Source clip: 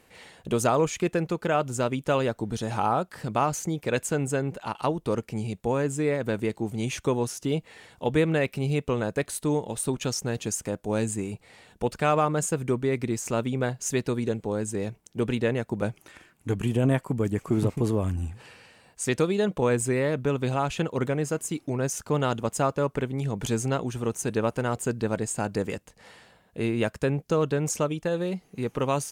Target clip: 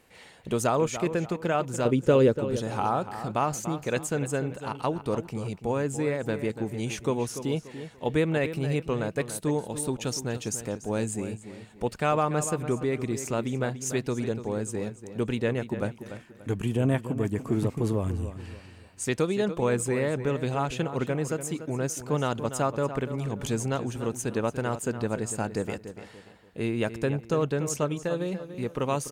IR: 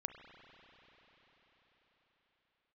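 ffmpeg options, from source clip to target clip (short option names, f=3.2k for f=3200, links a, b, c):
-filter_complex "[0:a]asettb=1/sr,asplit=3[a][b][c];[a]atrim=end=1.854[d];[b]atrim=start=1.85:end=2.39,asetpts=PTS-STARTPTS,afade=t=in:d=0.004:c=qsin,afade=t=out:st=0.536:d=0.004:c=qsin,lowshelf=f=580:t=q:w=3:g=6[e];[c]atrim=start=2.386[f];[d][e]acrossfade=d=0.004:c1=hsin:c2=qsin[g];[g][f]acrossfade=d=0.004:c1=qsin:c2=hsin,asplit=2[h][i];[i]adelay=290,lowpass=f=4.1k:p=1,volume=-11dB,asplit=2[j][k];[k]adelay=290,lowpass=f=4.1k:p=1,volume=0.34,asplit=2[l][m];[m]adelay=290,lowpass=f=4.1k:p=1,volume=0.34,asplit=2[n][o];[o]adelay=290,lowpass=f=4.1k:p=1,volume=0.34[p];[h][j][l][n][p]amix=inputs=5:normalize=0,volume=-2dB"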